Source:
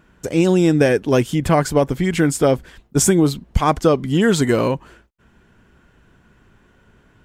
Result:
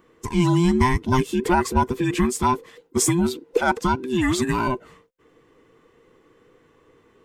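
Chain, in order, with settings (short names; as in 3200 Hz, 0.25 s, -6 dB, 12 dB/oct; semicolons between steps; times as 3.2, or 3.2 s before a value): band inversion scrambler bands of 500 Hz; 2.25–4.68 low shelf 110 Hz -10.5 dB; gain -3.5 dB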